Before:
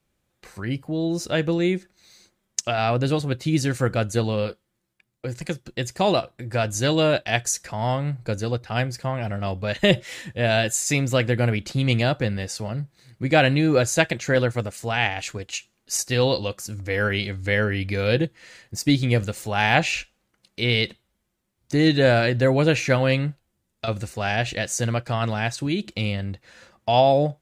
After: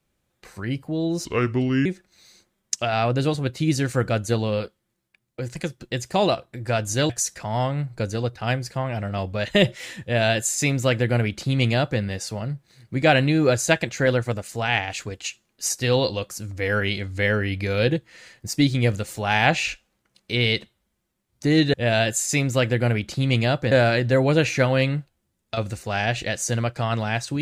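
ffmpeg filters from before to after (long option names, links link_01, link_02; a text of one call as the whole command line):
ffmpeg -i in.wav -filter_complex "[0:a]asplit=6[link_01][link_02][link_03][link_04][link_05][link_06];[link_01]atrim=end=1.254[link_07];[link_02]atrim=start=1.25:end=1.71,asetpts=PTS-STARTPTS,asetrate=33516,aresample=44100,atrim=end_sample=26692,asetpts=PTS-STARTPTS[link_08];[link_03]atrim=start=1.706:end=6.952[link_09];[link_04]atrim=start=7.378:end=22.022[link_10];[link_05]atrim=start=10.308:end=12.292[link_11];[link_06]atrim=start=22.018[link_12];[link_07][link_08]acrossfade=duration=0.004:curve1=hsin:curve2=hsin[link_13];[link_13][link_09]acrossfade=duration=0.004:curve1=hsin:curve2=hsin[link_14];[link_14][link_10]acrossfade=duration=0.004:curve1=hsin:curve2=hsin[link_15];[link_15][link_11]acrossfade=duration=0.004:curve1=hsin:curve2=hsin[link_16];[link_16][link_12]acrossfade=duration=0.004:curve1=hsin:curve2=hsin" out.wav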